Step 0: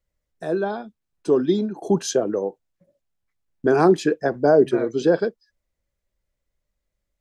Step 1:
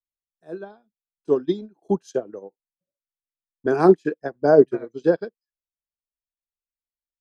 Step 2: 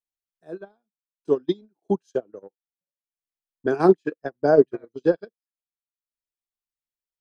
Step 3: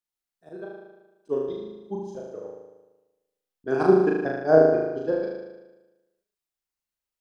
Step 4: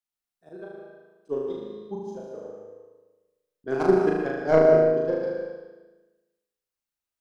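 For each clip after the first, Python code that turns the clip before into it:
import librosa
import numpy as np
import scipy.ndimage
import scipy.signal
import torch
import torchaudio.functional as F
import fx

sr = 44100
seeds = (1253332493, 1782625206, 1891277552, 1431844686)

y1 = fx.upward_expand(x, sr, threshold_db=-33.0, expansion=2.5)
y1 = F.gain(torch.from_numpy(y1), 4.0).numpy()
y2 = fx.transient(y1, sr, attack_db=3, sustain_db=-11)
y2 = fx.dynamic_eq(y2, sr, hz=3100.0, q=1.4, threshold_db=-44.0, ratio=4.0, max_db=4)
y2 = F.gain(torch.from_numpy(y2), -3.5).numpy()
y3 = fx.auto_swell(y2, sr, attack_ms=108.0)
y3 = fx.room_flutter(y3, sr, wall_m=6.5, rt60_s=1.1)
y4 = fx.tracing_dist(y3, sr, depth_ms=0.11)
y4 = fx.rev_plate(y4, sr, seeds[0], rt60_s=0.93, hf_ratio=0.8, predelay_ms=115, drr_db=4.0)
y4 = F.gain(torch.from_numpy(y4), -2.5).numpy()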